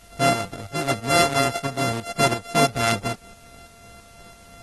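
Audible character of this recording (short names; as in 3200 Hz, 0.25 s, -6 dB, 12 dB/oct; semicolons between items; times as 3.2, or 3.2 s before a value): a buzz of ramps at a fixed pitch in blocks of 64 samples; tremolo saw up 3 Hz, depth 60%; a quantiser's noise floor 10-bit, dither triangular; AAC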